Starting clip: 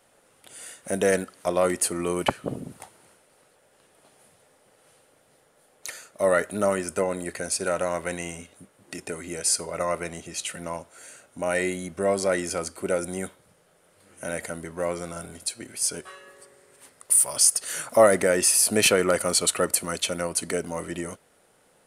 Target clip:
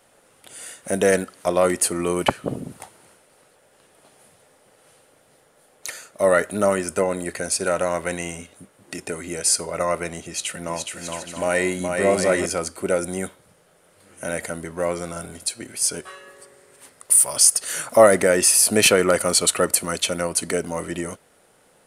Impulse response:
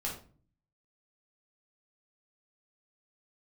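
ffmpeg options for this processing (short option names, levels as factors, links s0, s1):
-filter_complex "[0:a]asettb=1/sr,asplit=3[s0][s1][s2];[s0]atrim=end=10.264[s3];[s1]atrim=start=10.26:end=12.46,asetpts=PTS-STARTPTS,afade=t=in:d=0.004:c=qsin,afade=t=out:st=2.196:d=0.004:c=qsin,aecho=1:1:420|672|823.2|913.9|968.4:0.631|0.398|0.251|0.158|0.1,atrim=end_sample=97020[s4];[s2]atrim=start=12.456[s5];[s3][s4]acrossfade=d=0.004:c1=hsin:c2=qsin[s6];[s6][s5]acrossfade=d=0.004:c1=qsin:c2=hsin,volume=1.58"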